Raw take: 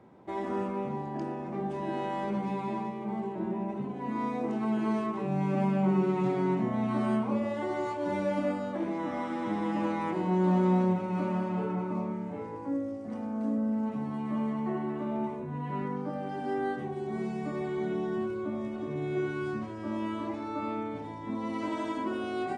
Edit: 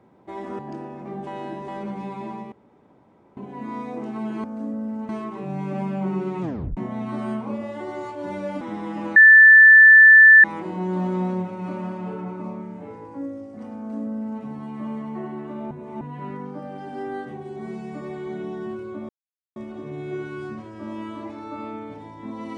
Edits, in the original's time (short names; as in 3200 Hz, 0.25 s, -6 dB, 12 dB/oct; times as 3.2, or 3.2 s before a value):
0.59–1.06 cut
1.74–2.15 reverse
2.99–3.84 room tone
6.24 tape stop 0.35 s
8.43–9.4 cut
9.95 add tone 1760 Hz -6 dBFS 1.28 s
13.28–13.93 copy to 4.91
15.22–15.52 reverse
18.6 insert silence 0.47 s